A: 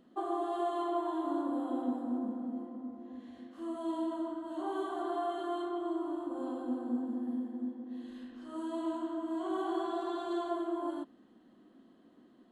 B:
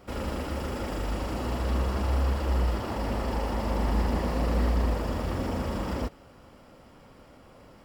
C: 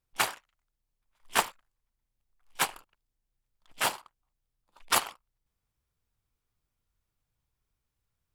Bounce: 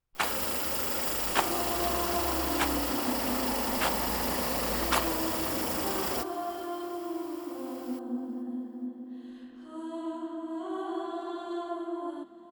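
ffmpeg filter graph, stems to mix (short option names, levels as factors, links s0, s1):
-filter_complex "[0:a]adelay=1200,volume=0.944,asplit=2[s0][s1];[s1]volume=0.141[s2];[1:a]aemphasis=mode=production:type=riaa,adelay=150,volume=1.06,asplit=2[s3][s4];[s4]volume=0.106[s5];[2:a]highshelf=f=4800:g=-8.5,volume=0.891[s6];[s2][s5]amix=inputs=2:normalize=0,aecho=0:1:435|870|1305|1740|2175|2610:1|0.41|0.168|0.0689|0.0283|0.0116[s7];[s0][s3][s6][s7]amix=inputs=4:normalize=0"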